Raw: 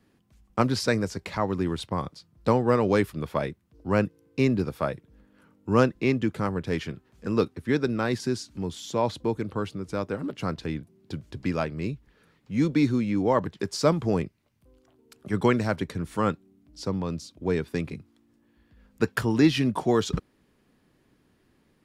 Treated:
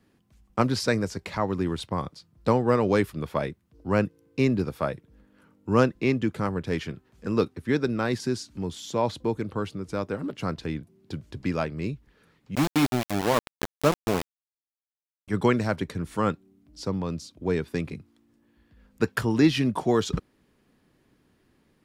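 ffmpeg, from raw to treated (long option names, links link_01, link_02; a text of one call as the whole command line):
ffmpeg -i in.wav -filter_complex "[0:a]asettb=1/sr,asplit=3[link_01][link_02][link_03];[link_01]atrim=end=12.554[link_04];[link_02]atrim=start=12.55:end=15.28,asetpts=PTS-STARTPTS,afade=type=in:duration=0.004:curve=qsin,afade=type=out:start_time=2.726:duration=0.004:curve=qsin,aeval=exprs='val(0)*gte(abs(val(0)),0.0891)':channel_layout=same[link_05];[link_03]atrim=start=15.276[link_06];[link_04][link_05]acrossfade=duration=0.004:curve1=hsin:curve2=qsin[link_07];[link_07][link_06]acrossfade=duration=0.004:curve1=qsin:curve2=hsin" out.wav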